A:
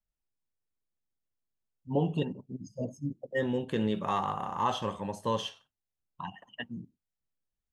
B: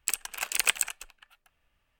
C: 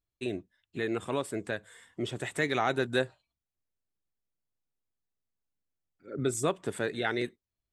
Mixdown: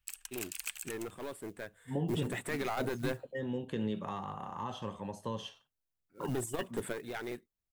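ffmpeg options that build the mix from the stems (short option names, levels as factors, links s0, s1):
-filter_complex "[0:a]acrossover=split=330[s0][s1];[s1]acompressor=threshold=0.02:ratio=4[s2];[s0][s2]amix=inputs=2:normalize=0,volume=0.596,asplit=2[s3][s4];[1:a]equalizer=f=500:w=0.58:g=-14,volume=0.355[s5];[2:a]equalizer=f=5700:t=o:w=1.5:g=-11,aeval=exprs='clip(val(0),-1,0.0282)':c=same,acrusher=bits=6:mode=log:mix=0:aa=0.000001,adelay=100,volume=1[s6];[s4]apad=whole_len=345051[s7];[s6][s7]sidechaingate=range=0.447:threshold=0.00141:ratio=16:detection=peak[s8];[s5][s8]amix=inputs=2:normalize=0,highshelf=f=6300:g=7,alimiter=limit=0.0708:level=0:latency=1:release=52,volume=1[s9];[s3][s9]amix=inputs=2:normalize=0"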